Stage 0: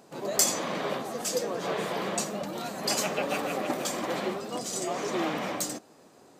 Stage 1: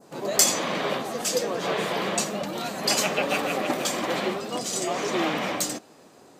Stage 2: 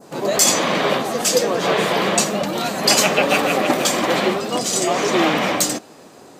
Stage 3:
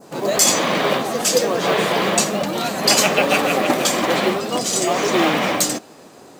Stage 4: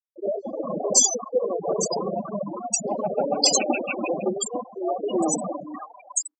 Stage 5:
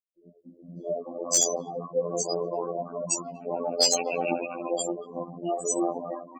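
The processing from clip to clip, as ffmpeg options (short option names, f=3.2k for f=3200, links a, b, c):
-af "adynamicequalizer=threshold=0.00562:dfrequency=2900:dqfactor=0.89:tfrequency=2900:tqfactor=0.89:attack=5:release=100:ratio=0.375:range=2:mode=boostabove:tftype=bell,volume=3.5dB"
-af "alimiter=level_in=9.5dB:limit=-1dB:release=50:level=0:latency=1,volume=-1dB"
-af "acrusher=bits=6:mode=log:mix=0:aa=0.000001"
-filter_complex "[0:a]afftfilt=real='re*gte(hypot(re,im),0.398)':imag='im*gte(hypot(re,im),0.398)':win_size=1024:overlap=0.75,equalizer=f=1k:t=o:w=0.67:g=5,equalizer=f=2.5k:t=o:w=0.67:g=-3,equalizer=f=6.3k:t=o:w=0.67:g=6,equalizer=f=16k:t=o:w=0.67:g=10,acrossover=split=1100[a][b];[b]adelay=560[c];[a][c]amix=inputs=2:normalize=0,volume=-4.5dB"
-filter_complex "[0:a]acrossover=split=220|1700[a][b][c];[c]adelay=380[d];[b]adelay=620[e];[a][e][d]amix=inputs=3:normalize=0,afftfilt=real='hypot(re,im)*cos(PI*b)':imag='0':win_size=2048:overlap=0.75,aeval=exprs='clip(val(0),-1,0.316)':c=same"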